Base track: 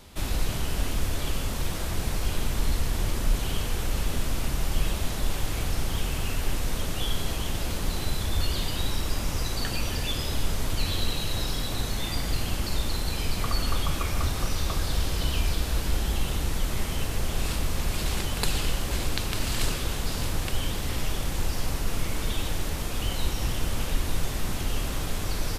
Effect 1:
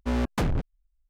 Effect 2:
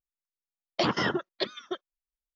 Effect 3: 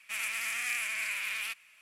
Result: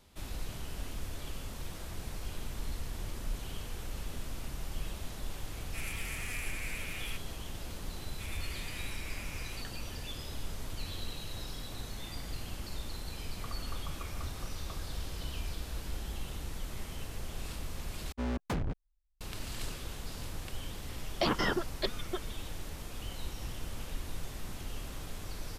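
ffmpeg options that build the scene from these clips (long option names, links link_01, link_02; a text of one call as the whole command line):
ffmpeg -i bed.wav -i cue0.wav -i cue1.wav -i cue2.wav -filter_complex "[3:a]asplit=2[link_01][link_02];[0:a]volume=-12.5dB[link_03];[link_01]highshelf=frequency=12000:gain=6[link_04];[link_03]asplit=2[link_05][link_06];[link_05]atrim=end=18.124[link_07];[1:a]atrim=end=1.09,asetpts=PTS-STARTPTS,volume=-8dB[link_08];[link_06]atrim=start=19.206[link_09];[link_04]atrim=end=1.81,asetpts=PTS-STARTPTS,volume=-8.5dB,afade=type=in:duration=0.004:curve=hsin,afade=type=out:start_time=1.806:duration=0.004:curve=hsin,adelay=5640[link_10];[link_02]atrim=end=1.81,asetpts=PTS-STARTPTS,volume=-13dB,afade=type=in:duration=0.004:curve=hsin,afade=type=out:start_time=1.806:duration=0.004:curve=hsin,adelay=8090[link_11];[2:a]atrim=end=2.35,asetpts=PTS-STARTPTS,volume=-3.5dB,afade=type=in:duration=0.004:curve=hsin,afade=type=out:start_time=2.346:duration=0.004:curve=hsin,adelay=20420[link_12];[link_07][link_08]acrossfade=duration=0.004:curve1=hsin:curve2=hsin[link_13];[link_13][link_09]acrossfade=duration=0.004:curve1=hsin:curve2=hsin[link_14];[link_14][link_10][link_11][link_12]amix=inputs=4:normalize=0" out.wav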